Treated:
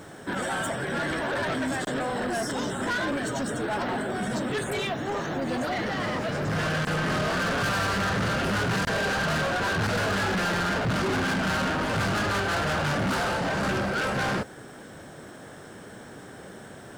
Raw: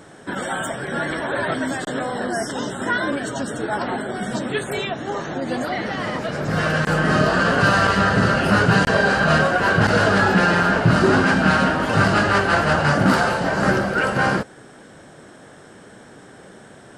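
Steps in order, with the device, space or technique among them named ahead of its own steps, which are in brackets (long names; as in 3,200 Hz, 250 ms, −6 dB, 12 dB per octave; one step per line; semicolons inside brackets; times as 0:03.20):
open-reel tape (soft clipping −24.5 dBFS, distortion −5 dB; parametric band 80 Hz +3.5 dB 1.01 octaves; white noise bed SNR 38 dB)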